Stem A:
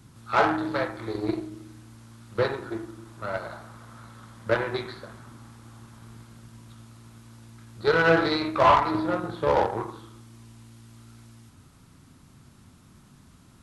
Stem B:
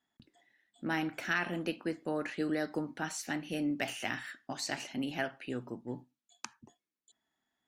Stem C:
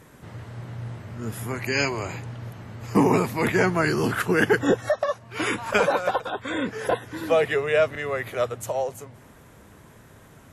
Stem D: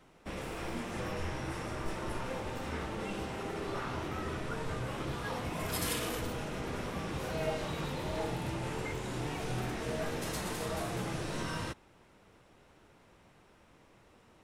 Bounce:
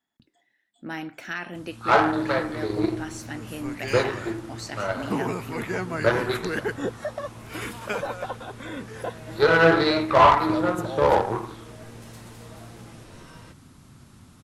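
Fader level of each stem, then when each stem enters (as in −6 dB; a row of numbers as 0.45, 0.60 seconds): +3.0, −0.5, −8.5, −10.0 decibels; 1.55, 0.00, 2.15, 1.80 seconds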